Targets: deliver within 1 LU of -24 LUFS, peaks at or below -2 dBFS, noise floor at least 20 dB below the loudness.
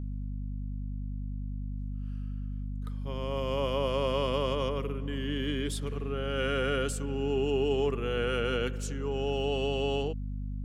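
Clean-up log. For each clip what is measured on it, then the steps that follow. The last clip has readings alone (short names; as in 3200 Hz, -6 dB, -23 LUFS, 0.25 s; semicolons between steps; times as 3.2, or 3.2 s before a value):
hum 50 Hz; harmonics up to 250 Hz; hum level -33 dBFS; loudness -32.0 LUFS; peak -17.0 dBFS; loudness target -24.0 LUFS
-> de-hum 50 Hz, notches 5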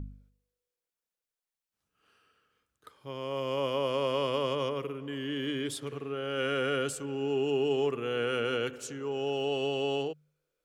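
hum none; loudness -32.0 LUFS; peak -18.5 dBFS; loudness target -24.0 LUFS
-> gain +8 dB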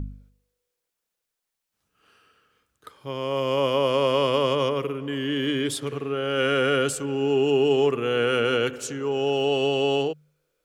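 loudness -24.0 LUFS; peak -10.5 dBFS; noise floor -83 dBFS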